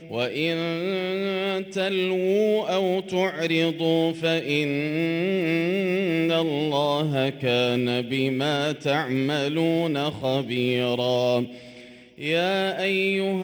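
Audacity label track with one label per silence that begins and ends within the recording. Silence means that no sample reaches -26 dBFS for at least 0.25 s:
11.440000	12.210000	silence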